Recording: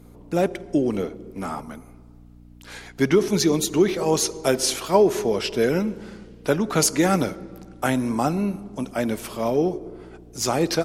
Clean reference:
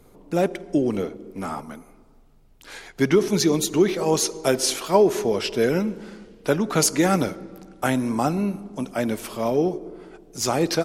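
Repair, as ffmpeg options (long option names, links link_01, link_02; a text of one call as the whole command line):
ffmpeg -i in.wav -af "bandreject=frequency=59.6:width_type=h:width=4,bandreject=frequency=119.2:width_type=h:width=4,bandreject=frequency=178.8:width_type=h:width=4,bandreject=frequency=238.4:width_type=h:width=4,bandreject=frequency=298:width_type=h:width=4" out.wav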